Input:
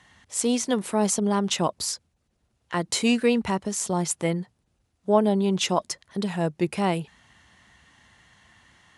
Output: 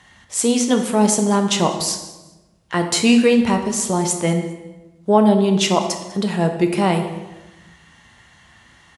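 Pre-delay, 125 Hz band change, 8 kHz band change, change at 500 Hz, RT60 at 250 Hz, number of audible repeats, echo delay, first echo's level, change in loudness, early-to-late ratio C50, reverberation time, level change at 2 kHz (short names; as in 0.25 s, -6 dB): 3 ms, +7.0 dB, +6.5 dB, +6.5 dB, 1.3 s, 2, 0.199 s, -21.0 dB, +7.0 dB, 7.5 dB, 1.1 s, +7.0 dB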